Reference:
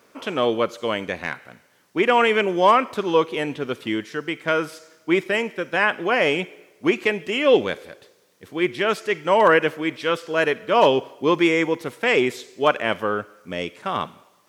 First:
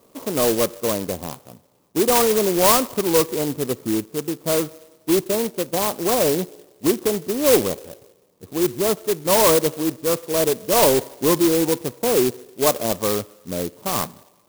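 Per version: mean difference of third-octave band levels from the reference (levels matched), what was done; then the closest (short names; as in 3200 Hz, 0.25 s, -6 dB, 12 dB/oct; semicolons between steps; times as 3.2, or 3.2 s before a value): 9.5 dB: elliptic low-pass 1200 Hz; low shelf 120 Hz +8 dB; in parallel at -8 dB: wavefolder -18 dBFS; on the sum: clock jitter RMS 0.14 ms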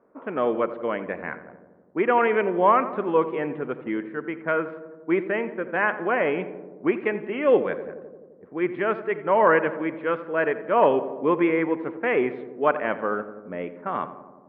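7.0 dB: LPF 2000 Hz 24 dB/oct; low-pass opened by the level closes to 870 Hz, open at -17 dBFS; bell 100 Hz -14.5 dB 0.48 oct; darkening echo 86 ms, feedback 77%, low-pass 1200 Hz, level -12 dB; gain -2.5 dB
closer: second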